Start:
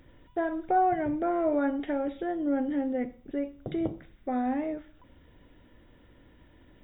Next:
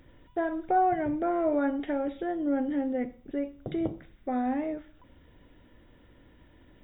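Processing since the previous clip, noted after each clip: no audible change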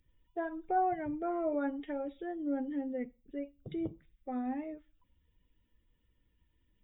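expander on every frequency bin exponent 1.5; trim -5 dB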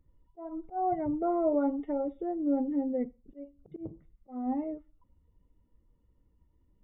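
Savitzky-Golay filter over 65 samples; slow attack 254 ms; trim +6 dB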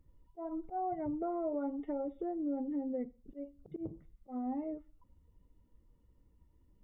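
compression 3:1, threshold -37 dBFS, peak gain reduction 10.5 dB; trim +1 dB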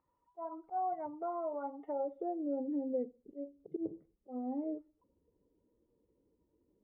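band-pass sweep 1 kHz -> 420 Hz, 1.61–2.68 s; trim +7 dB

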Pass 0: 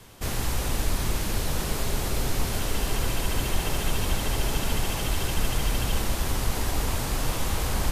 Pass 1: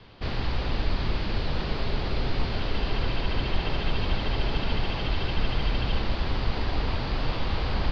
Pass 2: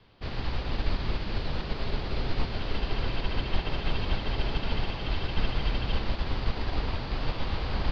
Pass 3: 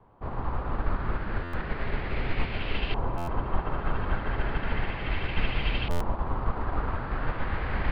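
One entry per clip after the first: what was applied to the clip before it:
Chebyshev low-pass 4.7 kHz, order 5
upward expansion 1.5:1, over -36 dBFS
LFO low-pass saw up 0.34 Hz 940–2800 Hz; buffer glitch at 1.43/3.17/5.90 s, samples 512, times 8

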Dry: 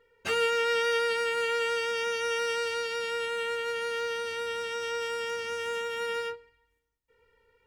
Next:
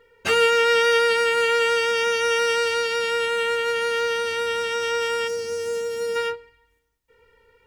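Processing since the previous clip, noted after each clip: time-frequency box 5.28–6.16 s, 880–4100 Hz -12 dB; trim +8.5 dB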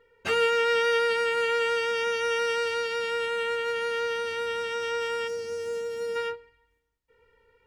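treble shelf 4.9 kHz -7 dB; trim -5 dB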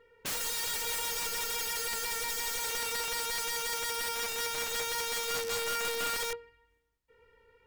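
integer overflow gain 29 dB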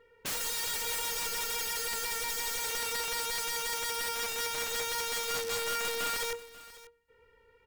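delay 540 ms -18 dB

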